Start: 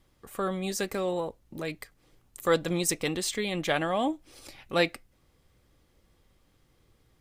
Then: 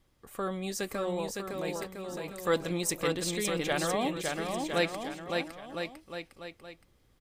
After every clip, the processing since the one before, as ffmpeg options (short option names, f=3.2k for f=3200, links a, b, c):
-af "aecho=1:1:560|1008|1366|1653|1882:0.631|0.398|0.251|0.158|0.1,volume=-3.5dB"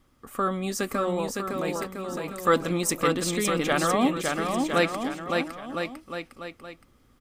-af "equalizer=f=250:t=o:w=0.33:g=10,equalizer=f=1.25k:t=o:w=0.33:g=9,equalizer=f=4k:t=o:w=0.33:g=-3,volume=4.5dB"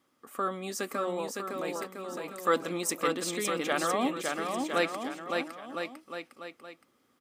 -af "highpass=260,volume=-4.5dB"